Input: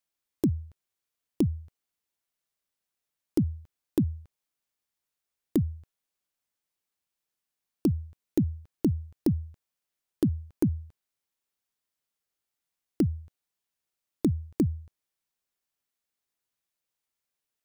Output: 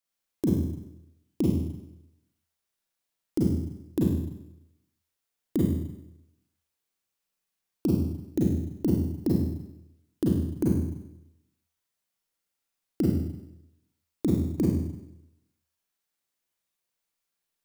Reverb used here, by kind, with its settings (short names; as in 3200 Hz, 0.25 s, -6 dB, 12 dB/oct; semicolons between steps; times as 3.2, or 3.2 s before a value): Schroeder reverb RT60 0.85 s, combs from 33 ms, DRR -4.5 dB; gain -3 dB